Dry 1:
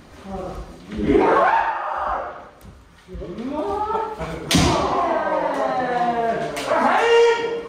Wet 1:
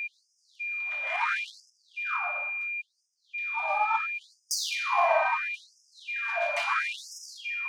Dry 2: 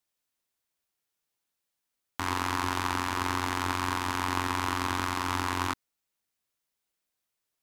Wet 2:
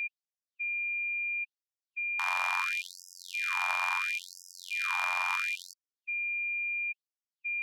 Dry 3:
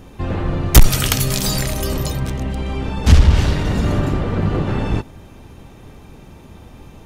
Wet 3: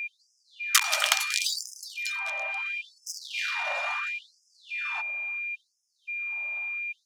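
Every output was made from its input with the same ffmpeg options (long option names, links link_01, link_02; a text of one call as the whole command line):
ffmpeg -i in.wav -af "adynamicsmooth=sensitivity=2:basefreq=3700,aeval=exprs='val(0)+0.0398*sin(2*PI*2400*n/s)':channel_layout=same,afftfilt=real='re*gte(b*sr/1024,540*pow(5000/540,0.5+0.5*sin(2*PI*0.73*pts/sr)))':imag='im*gte(b*sr/1024,540*pow(5000/540,0.5+0.5*sin(2*PI*0.73*pts/sr)))':win_size=1024:overlap=0.75,volume=-2dB" out.wav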